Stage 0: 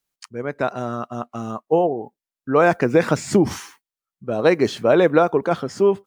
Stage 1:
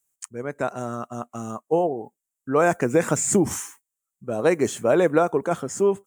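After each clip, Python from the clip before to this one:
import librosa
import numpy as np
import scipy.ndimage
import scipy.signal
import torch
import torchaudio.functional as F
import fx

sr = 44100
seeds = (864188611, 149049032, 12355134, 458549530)

y = fx.high_shelf_res(x, sr, hz=5900.0, db=9.0, q=3.0)
y = y * librosa.db_to_amplitude(-3.5)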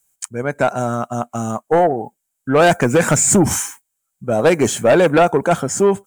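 y = x + 0.32 * np.pad(x, (int(1.3 * sr / 1000.0), 0))[:len(x)]
y = fx.fold_sine(y, sr, drive_db=6, ceiling_db=-7.0)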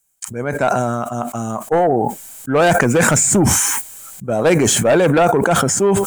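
y = fx.sustainer(x, sr, db_per_s=22.0)
y = y * librosa.db_to_amplitude(-1.5)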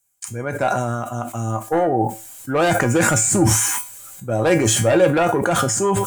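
y = fx.comb_fb(x, sr, f0_hz=110.0, decay_s=0.29, harmonics='odd', damping=0.0, mix_pct=80)
y = y * librosa.db_to_amplitude(7.0)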